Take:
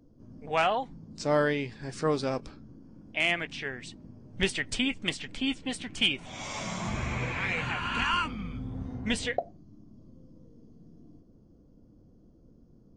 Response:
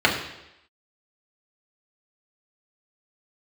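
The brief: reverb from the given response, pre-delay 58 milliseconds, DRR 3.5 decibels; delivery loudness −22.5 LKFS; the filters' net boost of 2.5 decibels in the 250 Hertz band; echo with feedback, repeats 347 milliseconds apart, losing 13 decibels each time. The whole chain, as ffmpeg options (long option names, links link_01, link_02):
-filter_complex "[0:a]equalizer=frequency=250:width_type=o:gain=3,aecho=1:1:347|694|1041:0.224|0.0493|0.0108,asplit=2[link_01][link_02];[1:a]atrim=start_sample=2205,adelay=58[link_03];[link_02][link_03]afir=irnorm=-1:irlink=0,volume=-23.5dB[link_04];[link_01][link_04]amix=inputs=2:normalize=0,volume=6dB"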